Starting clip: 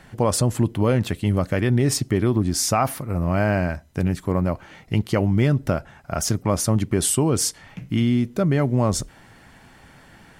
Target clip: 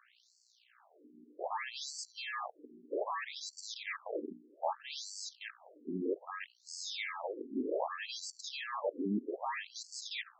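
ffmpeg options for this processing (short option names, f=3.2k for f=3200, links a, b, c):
-filter_complex "[0:a]areverse,acrossover=split=140|2100[a][b][c];[a]acompressor=threshold=-38dB:ratio=6[d];[d][b][c]amix=inputs=3:normalize=0,aeval=exprs='val(0)+0.0126*(sin(2*PI*60*n/s)+sin(2*PI*2*60*n/s)/2+sin(2*PI*3*60*n/s)/3+sin(2*PI*4*60*n/s)/4+sin(2*PI*5*60*n/s)/5)':c=same,aresample=16000,acrusher=samples=11:mix=1:aa=0.000001,aresample=44100,volume=22dB,asoftclip=hard,volume=-22dB,agate=range=-6dB:threshold=-34dB:ratio=16:detection=peak,afftfilt=real='re*between(b*sr/1024,290*pow(6100/290,0.5+0.5*sin(2*PI*0.63*pts/sr))/1.41,290*pow(6100/290,0.5+0.5*sin(2*PI*0.63*pts/sr))*1.41)':imag='im*between(b*sr/1024,290*pow(6100/290,0.5+0.5*sin(2*PI*0.63*pts/sr))/1.41,290*pow(6100/290,0.5+0.5*sin(2*PI*0.63*pts/sr))*1.41)':win_size=1024:overlap=0.75,volume=-2dB"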